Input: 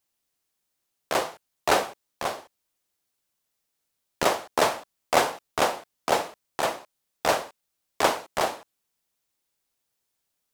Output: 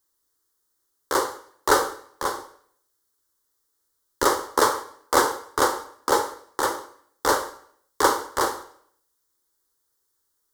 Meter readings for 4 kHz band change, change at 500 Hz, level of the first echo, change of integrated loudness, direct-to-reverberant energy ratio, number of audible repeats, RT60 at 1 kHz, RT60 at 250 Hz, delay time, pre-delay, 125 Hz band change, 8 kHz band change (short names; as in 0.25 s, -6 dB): +0.5 dB, +1.5 dB, none, +2.5 dB, 10.0 dB, none, 0.60 s, 0.70 s, none, 6 ms, -1.0 dB, +5.0 dB